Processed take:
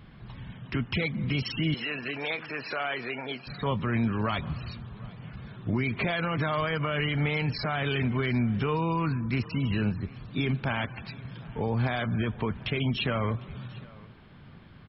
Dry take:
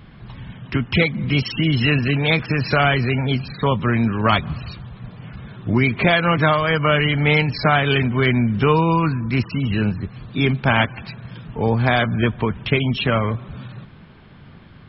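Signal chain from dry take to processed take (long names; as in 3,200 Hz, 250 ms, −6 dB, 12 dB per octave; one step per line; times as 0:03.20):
brickwall limiter −12.5 dBFS, peak gain reduction 9 dB
0:01.74–0:03.47: band-pass filter 420–3,700 Hz
single-tap delay 751 ms −23 dB
level −6.5 dB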